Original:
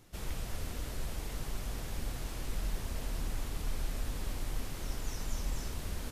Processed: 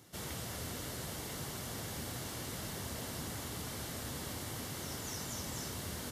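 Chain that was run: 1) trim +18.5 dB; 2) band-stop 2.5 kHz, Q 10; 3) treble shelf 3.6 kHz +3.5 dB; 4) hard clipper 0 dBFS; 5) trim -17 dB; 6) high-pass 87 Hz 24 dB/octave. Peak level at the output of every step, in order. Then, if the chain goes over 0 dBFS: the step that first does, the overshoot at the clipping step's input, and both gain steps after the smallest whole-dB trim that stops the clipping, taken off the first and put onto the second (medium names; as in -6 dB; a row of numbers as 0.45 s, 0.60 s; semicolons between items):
-3.5 dBFS, -3.5 dBFS, -3.0 dBFS, -3.0 dBFS, -20.0 dBFS, -29.0 dBFS; nothing clips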